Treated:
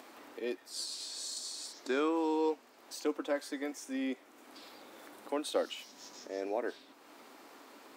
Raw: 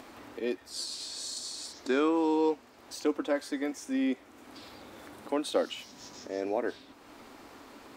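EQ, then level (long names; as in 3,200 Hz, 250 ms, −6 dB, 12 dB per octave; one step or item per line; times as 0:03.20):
high-pass filter 280 Hz 12 dB per octave
high-shelf EQ 11,000 Hz +6 dB
−3.5 dB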